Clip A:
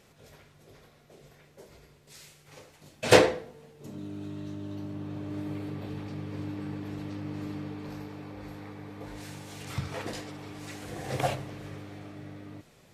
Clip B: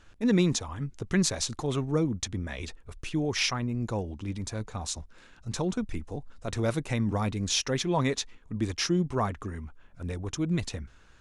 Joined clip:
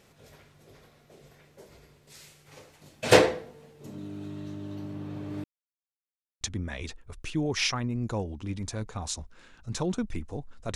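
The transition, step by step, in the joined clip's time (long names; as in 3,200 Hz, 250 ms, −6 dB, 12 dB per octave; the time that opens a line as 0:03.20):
clip A
0:05.44–0:06.41: silence
0:06.41: continue with clip B from 0:02.20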